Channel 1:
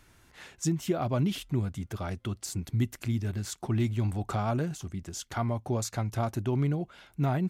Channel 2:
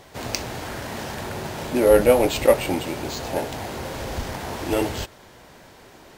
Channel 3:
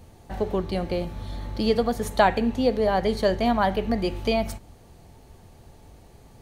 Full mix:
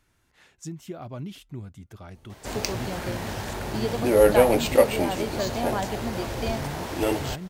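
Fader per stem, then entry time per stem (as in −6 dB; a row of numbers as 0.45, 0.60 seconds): −8.5, −2.0, −7.5 decibels; 0.00, 2.30, 2.15 seconds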